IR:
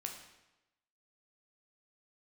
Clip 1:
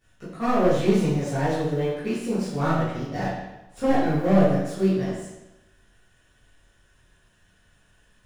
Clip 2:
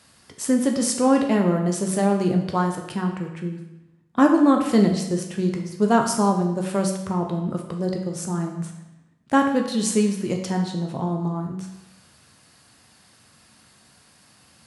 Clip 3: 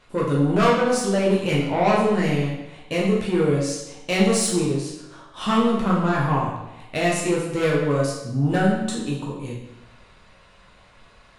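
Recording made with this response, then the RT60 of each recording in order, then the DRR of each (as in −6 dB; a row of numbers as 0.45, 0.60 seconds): 2; 1.0, 1.0, 1.0 seconds; −13.0, 2.0, −5.0 decibels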